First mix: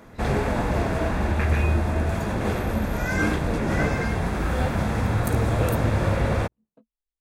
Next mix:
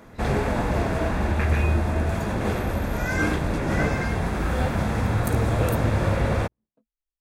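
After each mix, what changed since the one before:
second voice -10.5 dB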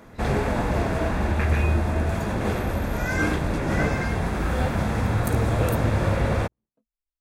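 second voice -5.0 dB

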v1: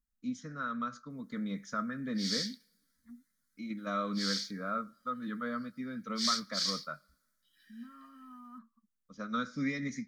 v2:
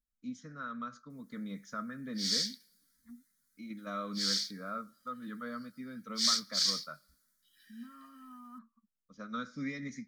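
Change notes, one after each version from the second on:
first voice -4.5 dB; background: add high shelf 5100 Hz +7.5 dB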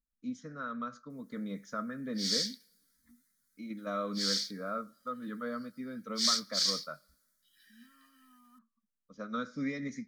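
first voice: add bell 500 Hz +7 dB 1.7 oct; second voice -11.5 dB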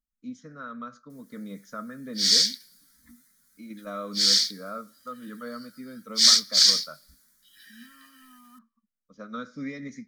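second voice +8.5 dB; background +12.0 dB

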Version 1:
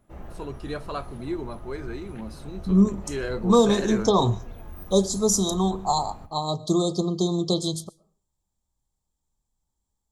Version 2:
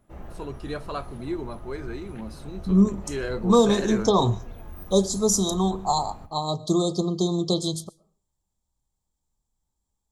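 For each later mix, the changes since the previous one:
none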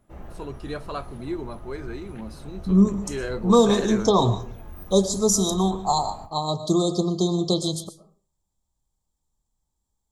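second voice: send +11.5 dB

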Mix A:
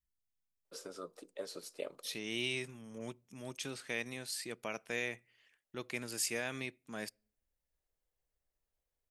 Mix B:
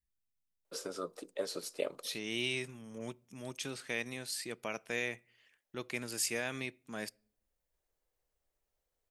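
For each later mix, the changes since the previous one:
first voice +6.0 dB; second voice: send +6.5 dB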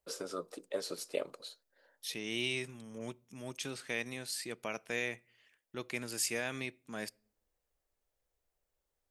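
first voice: entry -0.65 s

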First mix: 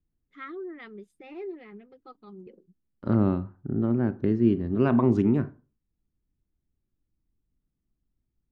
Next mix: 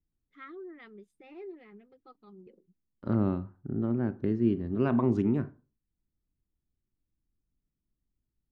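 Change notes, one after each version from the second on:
first voice -6.5 dB; second voice -4.5 dB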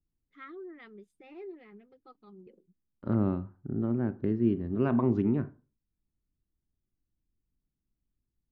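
second voice: add air absorption 170 m

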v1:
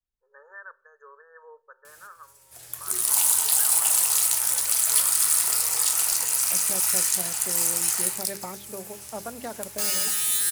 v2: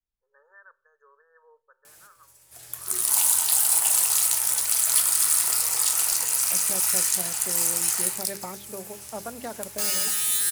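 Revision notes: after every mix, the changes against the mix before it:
first voice -9.0 dB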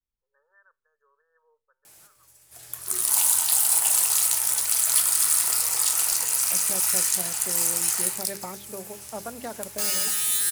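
first voice -8.5 dB; reverb: off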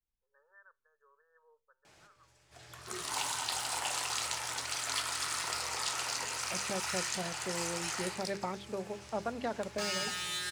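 background: add air absorption 150 m

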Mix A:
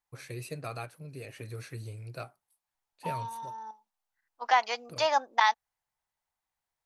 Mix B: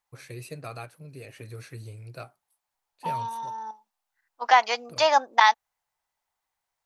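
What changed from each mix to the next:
second voice +6.0 dB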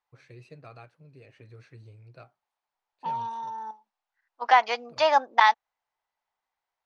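first voice -8.0 dB; master: add air absorption 140 m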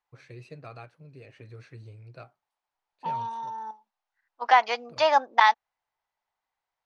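first voice +3.5 dB

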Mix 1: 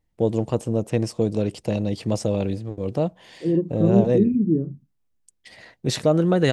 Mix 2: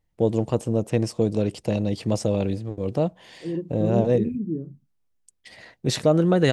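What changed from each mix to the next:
second voice -8.0 dB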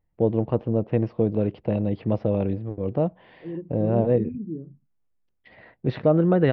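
second voice -4.5 dB; master: add Gaussian blur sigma 3.5 samples

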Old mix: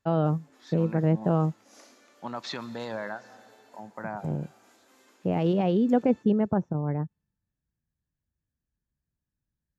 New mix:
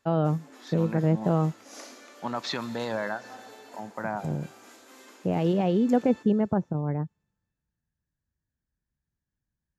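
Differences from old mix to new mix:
second voice +4.0 dB; background +9.5 dB

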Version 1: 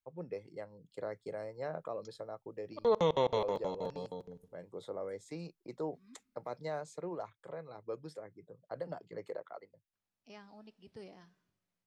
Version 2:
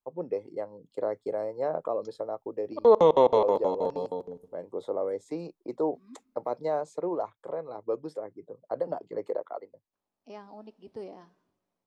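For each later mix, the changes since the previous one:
master: add band shelf 510 Hz +10.5 dB 2.6 oct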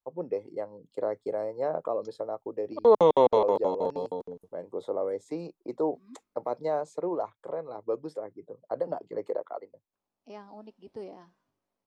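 reverb: off

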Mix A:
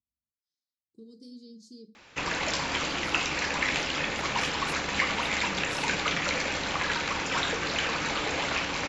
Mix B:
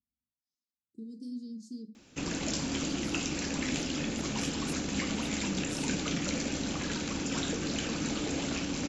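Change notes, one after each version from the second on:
master: add graphic EQ 250/500/1000/2000/4000/8000 Hz +9/-4/-11/-10/-5/+4 dB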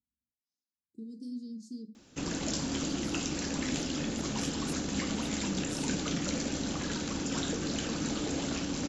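master: add bell 2400 Hz -5 dB 0.54 oct

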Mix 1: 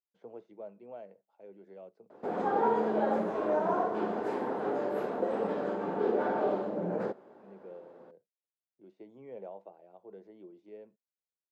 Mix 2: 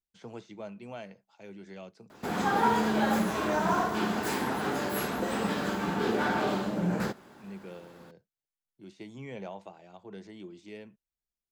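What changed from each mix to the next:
background -4.5 dB; master: remove band-pass 510 Hz, Q 1.9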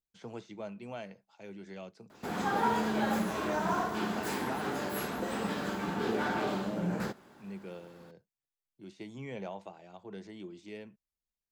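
background -4.0 dB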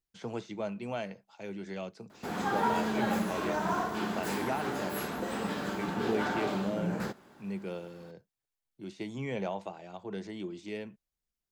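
speech +6.0 dB

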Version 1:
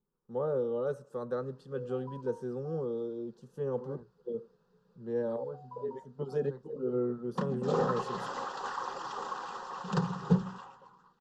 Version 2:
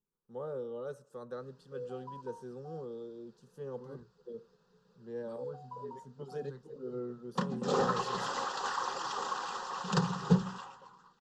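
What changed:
first voice -8.5 dB; second voice: add bell 660 Hz -12.5 dB 1.1 oct; master: add high shelf 2100 Hz +9 dB

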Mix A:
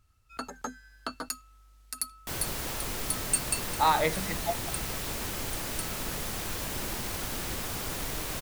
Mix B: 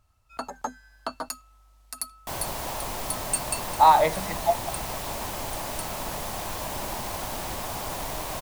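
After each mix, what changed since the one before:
master: add band shelf 790 Hz +9 dB 1.1 oct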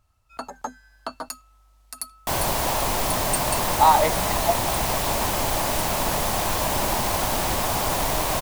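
second sound +9.0 dB

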